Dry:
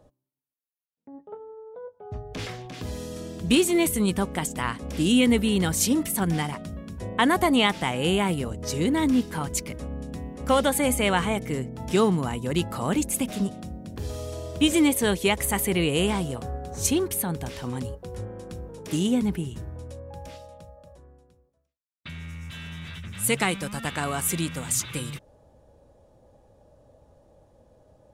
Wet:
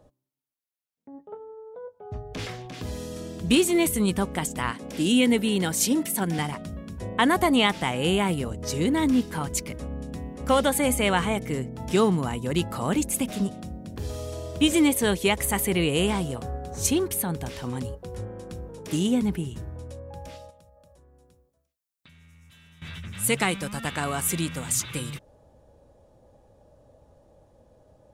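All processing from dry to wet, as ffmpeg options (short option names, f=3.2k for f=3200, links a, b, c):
-filter_complex "[0:a]asettb=1/sr,asplit=3[a][b][c];[a]atrim=end=4.714[d];[b]atrim=start=4.71:end=6.39,asetpts=PTS-STARTPTS,afade=t=in:d=0.004:c=qsin,afade=t=out:st=1.676:d=0.004:c=qsin,highpass=170,bandreject=f=1.2k:w=9.3[e];[c]atrim=start=6.386[f];[d][e]acrossfade=d=0.004:c1=hsin:c2=qsin[g];[g][f]acrossfade=d=0.004:c1=qsin:c2=hsin,asettb=1/sr,asplit=3[h][i][j];[h]atrim=end=20.504[k];[i]atrim=start=20.5:end=22.82,asetpts=PTS-STARTPTS,afade=t=in:d=0.004:c=qsin,afade=t=out:st=2.316:d=0.004:c=qsin,highshelf=f=6.1k:g=9,acompressor=threshold=-52dB:ratio=6:attack=3.2:release=140:knee=1:detection=peak[l];[j]atrim=start=22.816[m];[k][l]acrossfade=d=0.004:c1=hsin:c2=qsin[n];[n][m]acrossfade=d=0.004:c1=qsin:c2=hsin"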